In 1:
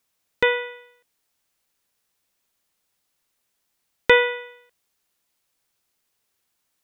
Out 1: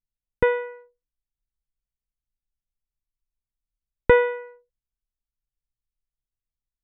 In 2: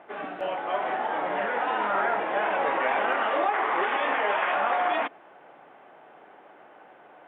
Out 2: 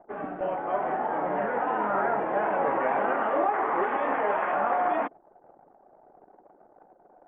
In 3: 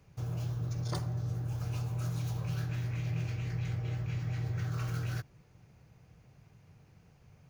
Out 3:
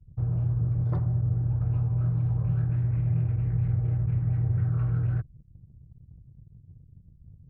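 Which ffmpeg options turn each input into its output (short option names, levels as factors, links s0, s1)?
-af "lowpass=1500,aemphasis=mode=reproduction:type=bsi,anlmdn=0.0251"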